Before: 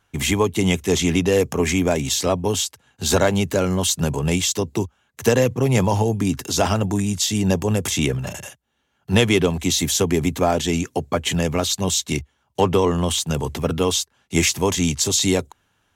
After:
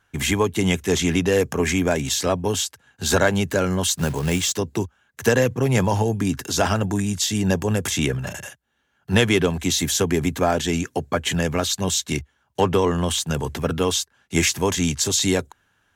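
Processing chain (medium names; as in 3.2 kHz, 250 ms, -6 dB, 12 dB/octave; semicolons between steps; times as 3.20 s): peaking EQ 1.6 kHz +7.5 dB 0.39 oct; 3.94–4.58 s: short-mantissa float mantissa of 2-bit; trim -1.5 dB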